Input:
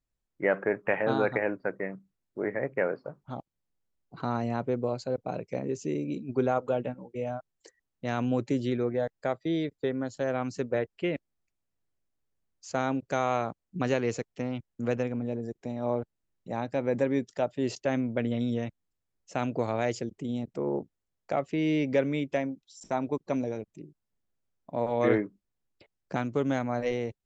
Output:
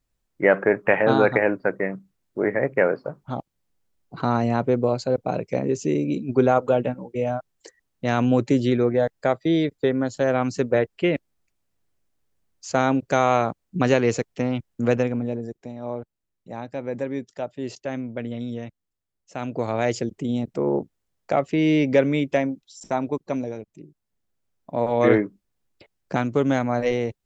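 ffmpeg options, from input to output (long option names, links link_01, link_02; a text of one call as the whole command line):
ffmpeg -i in.wav -af "volume=24dB,afade=type=out:start_time=14.93:duration=0.79:silence=0.316228,afade=type=in:start_time=19.36:duration=0.66:silence=0.354813,afade=type=out:start_time=22.46:duration=1.19:silence=0.446684,afade=type=in:start_time=23.65:duration=1.42:silence=0.473151" out.wav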